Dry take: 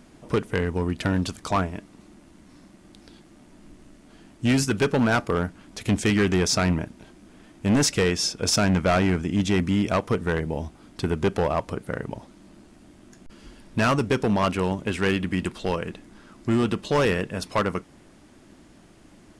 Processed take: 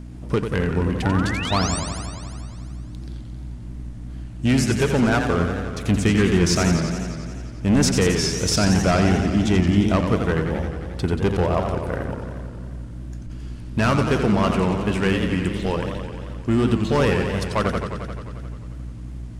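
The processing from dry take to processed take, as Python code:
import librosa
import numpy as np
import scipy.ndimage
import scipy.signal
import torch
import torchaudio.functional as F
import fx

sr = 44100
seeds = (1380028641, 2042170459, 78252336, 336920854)

y = fx.low_shelf(x, sr, hz=230.0, db=4.5)
y = fx.add_hum(y, sr, base_hz=60, snr_db=12)
y = np.sign(y) * np.maximum(np.abs(y) - 10.0 ** (-54.5 / 20.0), 0.0)
y = fx.spec_paint(y, sr, seeds[0], shape='rise', start_s=1.02, length_s=0.78, low_hz=730.0, high_hz=9400.0, level_db=-31.0)
y = fx.echo_warbled(y, sr, ms=88, feedback_pct=76, rate_hz=2.8, cents=163, wet_db=-7)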